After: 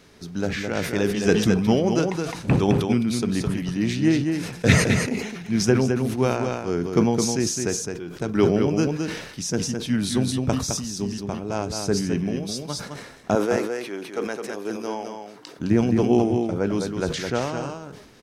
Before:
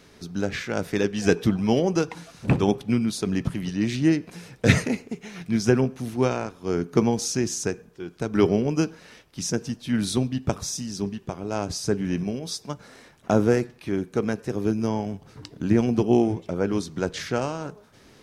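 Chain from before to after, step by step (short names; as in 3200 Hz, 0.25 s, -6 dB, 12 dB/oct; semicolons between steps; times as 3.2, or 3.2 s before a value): 13.35–15.59 HPF 460 Hz 12 dB/oct; echo 0.212 s -5.5 dB; sustainer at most 62 dB/s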